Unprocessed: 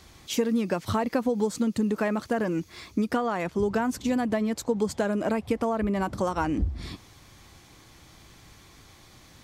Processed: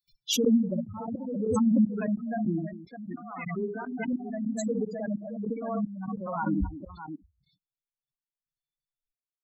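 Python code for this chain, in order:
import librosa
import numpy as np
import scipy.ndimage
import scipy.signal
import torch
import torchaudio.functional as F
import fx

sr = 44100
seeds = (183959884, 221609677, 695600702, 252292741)

y = fx.bin_expand(x, sr, power=3.0)
y = fx.peak_eq(y, sr, hz=200.0, db=12.5, octaves=0.72)
y = fx.echo_multitap(y, sr, ms=(57, 64, 243, 618), db=(-9.0, -8.0, -11.0, -8.5))
y = fx.step_gate(y, sr, bpm=195, pattern='.x....xxxxx..', floor_db=-24.0, edge_ms=4.5)
y = fx.spec_gate(y, sr, threshold_db=-15, keep='strong')
y = fx.low_shelf(y, sr, hz=360.0, db=-8.0, at=(2.73, 4.13))
y = fx.pre_swell(y, sr, db_per_s=35.0)
y = y * librosa.db_to_amplitude(-2.5)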